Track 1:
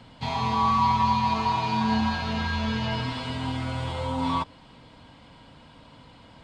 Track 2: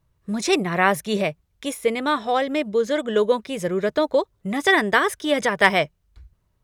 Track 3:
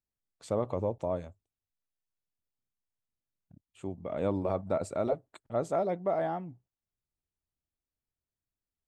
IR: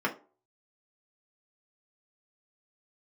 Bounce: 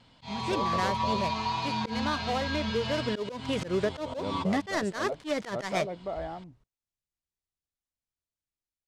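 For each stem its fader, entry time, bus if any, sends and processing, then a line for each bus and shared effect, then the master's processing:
−11.0 dB, 0.00 s, bus A, no send, high-shelf EQ 3,100 Hz +10.5 dB
0:02.87 −13 dB → 0:03.30 −4 dB, 0.00 s, bus A, no send, gap after every zero crossing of 0.13 ms
−10.0 dB, 0.00 s, no bus, no send, high-shelf EQ 5,200 Hz +11.5 dB
bus A: 0.0 dB, tape wow and flutter 20 cents; downward compressor 6 to 1, threshold −28 dBFS, peak gain reduction 13 dB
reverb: not used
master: low-pass filter 6,900 Hz 12 dB per octave; automatic gain control gain up to 4.5 dB; volume swells 108 ms

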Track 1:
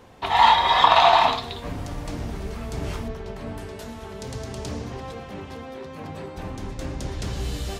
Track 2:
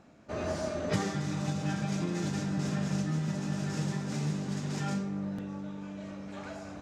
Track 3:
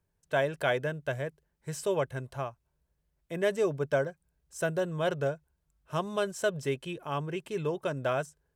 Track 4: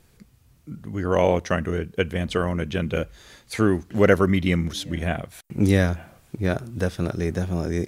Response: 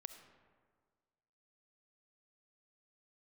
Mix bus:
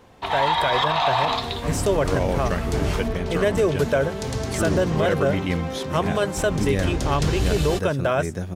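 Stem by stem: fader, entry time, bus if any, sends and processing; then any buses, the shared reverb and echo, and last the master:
−1.5 dB, 0.00 s, no send, downward compressor 4 to 1, threshold −19 dBFS, peak gain reduction 8.5 dB
−18.0 dB, 2.40 s, no send, floating-point word with a short mantissa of 4 bits
+2.5 dB, 0.00 s, no send, no processing
−11.5 dB, 1.00 s, no send, no processing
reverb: not used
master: automatic gain control gain up to 8 dB; brickwall limiter −11 dBFS, peak gain reduction 8 dB

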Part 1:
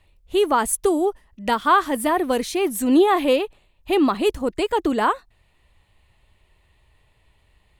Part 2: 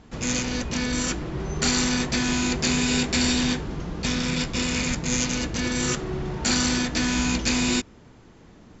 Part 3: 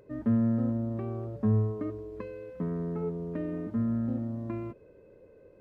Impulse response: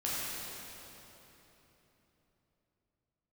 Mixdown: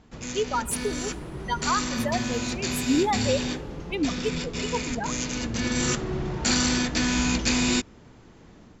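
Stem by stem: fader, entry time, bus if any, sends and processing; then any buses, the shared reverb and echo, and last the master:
−2.0 dB, 0.00 s, send −21 dB, spectral dynamics exaggerated over time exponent 3; brickwall limiter −16 dBFS, peak gain reduction 7 dB; pitch modulation by a square or saw wave saw up 4.4 Hz, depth 100 cents
−4.5 dB, 0.00 s, no send, automatic gain control gain up to 4.5 dB; automatic ducking −6 dB, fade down 0.35 s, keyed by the first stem
−6.5 dB, 1.70 s, no send, no processing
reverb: on, RT60 3.6 s, pre-delay 9 ms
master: no processing

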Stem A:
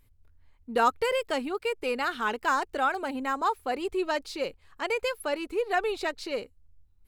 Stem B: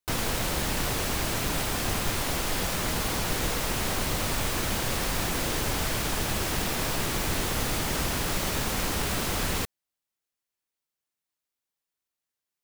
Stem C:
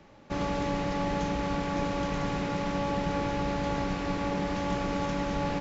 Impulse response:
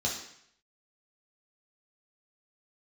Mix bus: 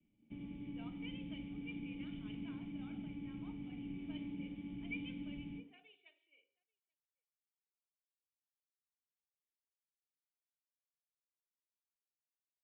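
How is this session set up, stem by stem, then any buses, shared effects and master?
−7.0 dB, 0.00 s, send −11.5 dB, echo send −19 dB, high-pass filter 560 Hz 24 dB per octave; low-pass that shuts in the quiet parts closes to 720 Hz, open at −23 dBFS
muted
+1.0 dB, 0.00 s, send −10.5 dB, no echo send, downward compressor 2.5 to 1, threshold −40 dBFS, peak gain reduction 10 dB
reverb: on, RT60 0.70 s, pre-delay 3 ms
echo: single-tap delay 838 ms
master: formant resonators in series i; parametric band 97 Hz −13 dB 0.21 octaves; multiband upward and downward expander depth 70%

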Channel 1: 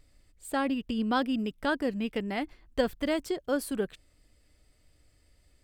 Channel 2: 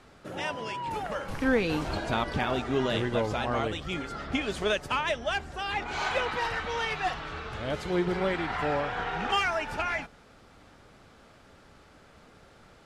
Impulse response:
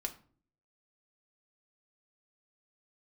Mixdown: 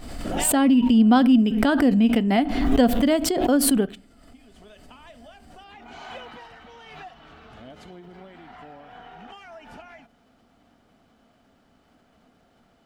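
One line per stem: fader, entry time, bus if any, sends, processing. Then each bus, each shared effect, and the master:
+1.5 dB, 0.00 s, send −9 dB, no processing
0:04.29 −14 dB → 0:04.76 −3 dB → 0:06.18 −3 dB → 0:06.55 −11 dB, 0.00 s, send −14.5 dB, downward compressor 6 to 1, threshold −36 dBFS, peak gain reduction 15.5 dB; bit-depth reduction 12 bits, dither none; automatic ducking −16 dB, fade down 1.80 s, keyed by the first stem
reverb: on, RT60 0.45 s, pre-delay 4 ms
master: hollow resonant body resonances 240/690/3,000 Hz, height 10 dB, ringing for 30 ms; background raised ahead of every attack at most 38 dB per second

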